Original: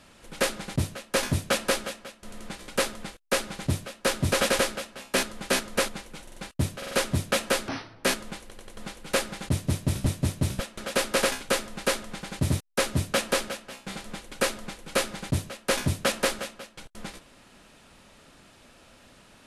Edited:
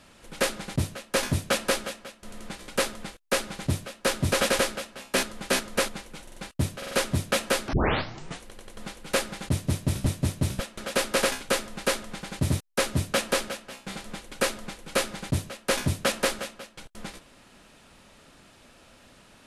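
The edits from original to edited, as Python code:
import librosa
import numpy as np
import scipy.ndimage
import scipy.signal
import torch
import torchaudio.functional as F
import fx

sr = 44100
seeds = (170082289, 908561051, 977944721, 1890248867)

y = fx.edit(x, sr, fx.tape_start(start_s=7.73, length_s=0.7), tone=tone)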